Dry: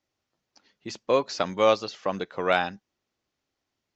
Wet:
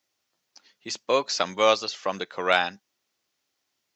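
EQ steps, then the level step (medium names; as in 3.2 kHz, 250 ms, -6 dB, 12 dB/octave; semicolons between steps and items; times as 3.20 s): high-pass 73 Hz; tilt EQ +2.5 dB/octave; +1.5 dB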